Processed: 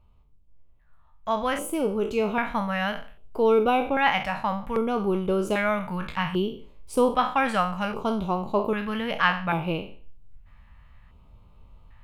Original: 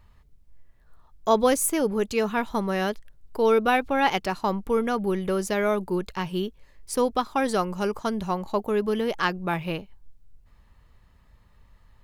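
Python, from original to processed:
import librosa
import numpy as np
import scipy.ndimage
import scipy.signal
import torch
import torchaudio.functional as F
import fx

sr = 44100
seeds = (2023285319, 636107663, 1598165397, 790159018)

y = fx.spec_trails(x, sr, decay_s=0.43)
y = fx.rider(y, sr, range_db=10, speed_s=2.0)
y = fx.high_shelf_res(y, sr, hz=3700.0, db=-10.5, q=1.5)
y = fx.filter_lfo_notch(y, sr, shape='square', hz=0.63, low_hz=380.0, high_hz=1800.0, q=0.86)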